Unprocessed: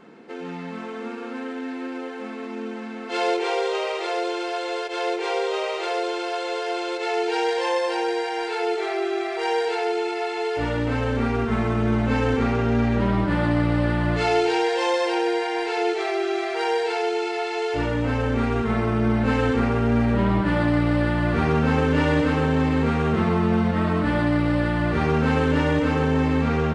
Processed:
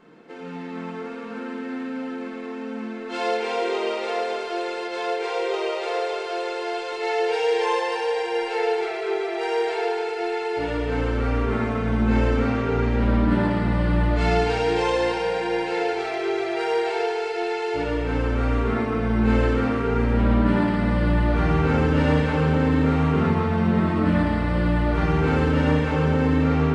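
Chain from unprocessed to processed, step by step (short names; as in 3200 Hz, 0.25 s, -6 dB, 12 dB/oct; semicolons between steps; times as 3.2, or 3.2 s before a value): 6.91–8.81 comb 6.8 ms, depth 53%; shoebox room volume 140 m³, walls hard, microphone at 0.52 m; gain -5 dB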